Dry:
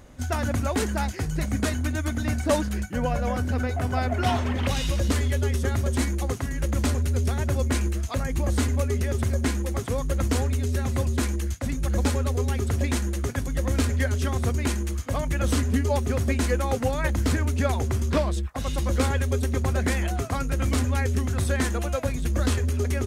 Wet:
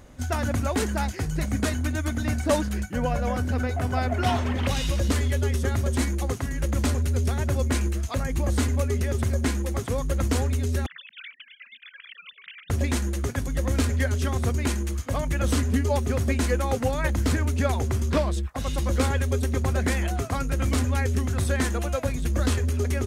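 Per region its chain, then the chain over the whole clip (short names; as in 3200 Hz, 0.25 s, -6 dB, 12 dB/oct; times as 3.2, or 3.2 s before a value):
10.86–12.7 sine-wave speech + inverse Chebyshev high-pass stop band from 870 Hz, stop band 50 dB + negative-ratio compressor -41 dBFS, ratio -0.5
whole clip: dry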